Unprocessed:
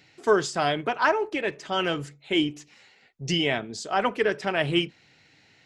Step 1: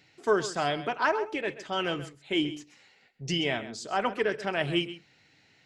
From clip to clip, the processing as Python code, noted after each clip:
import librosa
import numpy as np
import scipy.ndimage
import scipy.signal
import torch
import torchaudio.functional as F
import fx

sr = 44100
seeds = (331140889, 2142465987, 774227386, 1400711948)

y = x + 10.0 ** (-14.0 / 20.0) * np.pad(x, (int(131 * sr / 1000.0), 0))[:len(x)]
y = y * 10.0 ** (-4.0 / 20.0)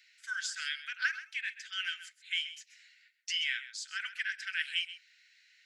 y = scipy.signal.sosfilt(scipy.signal.cheby1(6, 1.0, 1500.0, 'highpass', fs=sr, output='sos'), x)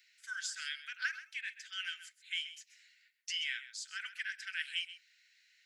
y = fx.high_shelf(x, sr, hz=8000.0, db=8.0)
y = y * 10.0 ** (-5.0 / 20.0)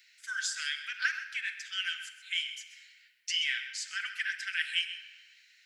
y = fx.room_shoebox(x, sr, seeds[0], volume_m3=2500.0, walls='mixed', distance_m=0.87)
y = y * 10.0 ** (5.5 / 20.0)